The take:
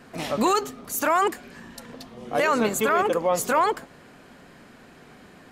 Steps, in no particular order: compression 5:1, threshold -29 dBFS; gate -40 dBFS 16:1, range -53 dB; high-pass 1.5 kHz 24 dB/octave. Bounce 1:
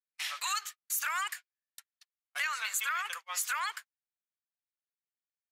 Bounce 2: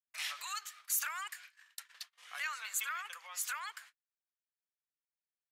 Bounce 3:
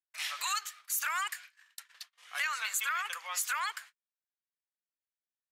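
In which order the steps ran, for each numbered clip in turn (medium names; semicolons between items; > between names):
high-pass > gate > compression; gate > compression > high-pass; gate > high-pass > compression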